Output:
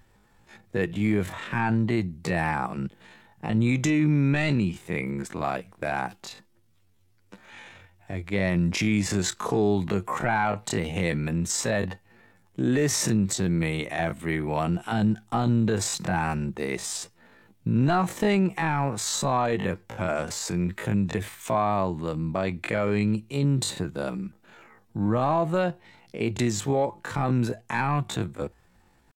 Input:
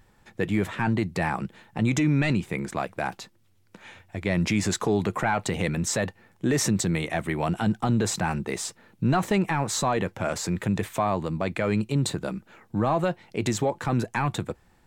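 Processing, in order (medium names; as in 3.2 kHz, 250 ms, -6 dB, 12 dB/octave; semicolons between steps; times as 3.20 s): tempo 0.51×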